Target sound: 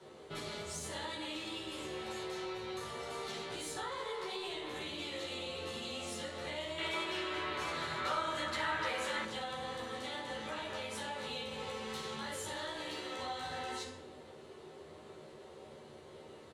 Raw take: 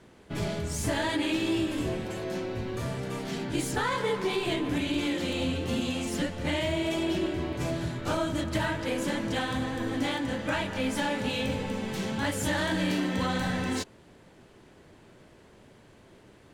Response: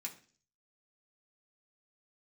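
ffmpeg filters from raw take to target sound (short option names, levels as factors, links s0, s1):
-filter_complex "[0:a]alimiter=level_in=1.33:limit=0.0631:level=0:latency=1:release=171,volume=0.75,firequalizer=gain_entry='entry(150,0);entry(370,12);entry(1200,5)':delay=0.05:min_phase=1,aecho=1:1:13|63:0.668|0.251[s0];[1:a]atrim=start_sample=2205,asetrate=22932,aresample=44100[s1];[s0][s1]afir=irnorm=-1:irlink=0,acrossover=split=82|830[s2][s3][s4];[s2]acompressor=threshold=0.002:ratio=4[s5];[s3]acompressor=threshold=0.0126:ratio=4[s6];[s4]acompressor=threshold=0.0224:ratio=4[s7];[s5][s6][s7]amix=inputs=3:normalize=0,asettb=1/sr,asplit=3[s8][s9][s10];[s8]atrim=end=6.784[s11];[s9]atrim=start=6.78:end=9.25,asetpts=PTS-STARTPTS,afade=t=in:d=0.004:c=qsin,afade=t=out:st=2.466:d=0.004:c=qsin,equalizer=f=1600:t=o:w=1.9:g=10.5[s12];[s10]atrim=start=9.246[s13];[s11][s12]acrossfade=d=0.004:c1=hsin:c2=qsin[s14];[s14][s13]acrossfade=d=0.004:c1=qsin:c2=hsin,volume=0.398"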